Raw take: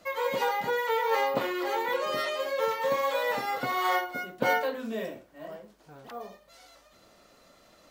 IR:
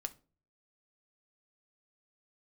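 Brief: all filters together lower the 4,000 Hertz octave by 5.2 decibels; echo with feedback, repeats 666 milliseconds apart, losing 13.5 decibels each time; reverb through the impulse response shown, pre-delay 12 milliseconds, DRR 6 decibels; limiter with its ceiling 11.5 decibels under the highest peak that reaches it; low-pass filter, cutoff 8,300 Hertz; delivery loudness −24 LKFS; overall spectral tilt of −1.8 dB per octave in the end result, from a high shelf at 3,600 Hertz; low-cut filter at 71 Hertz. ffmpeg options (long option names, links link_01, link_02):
-filter_complex "[0:a]highpass=71,lowpass=8300,highshelf=frequency=3600:gain=3,equalizer=frequency=4000:width_type=o:gain=-9,alimiter=level_in=1dB:limit=-24dB:level=0:latency=1,volume=-1dB,aecho=1:1:666|1332:0.211|0.0444,asplit=2[link_01][link_02];[1:a]atrim=start_sample=2205,adelay=12[link_03];[link_02][link_03]afir=irnorm=-1:irlink=0,volume=-4.5dB[link_04];[link_01][link_04]amix=inputs=2:normalize=0,volume=9dB"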